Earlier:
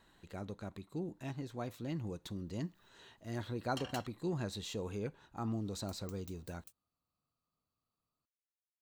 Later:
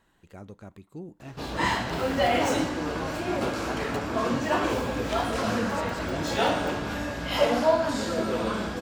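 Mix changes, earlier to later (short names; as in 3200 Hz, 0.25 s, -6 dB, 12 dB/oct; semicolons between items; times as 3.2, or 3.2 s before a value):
speech: add bell 4000 Hz -9 dB 0.23 oct; first sound: unmuted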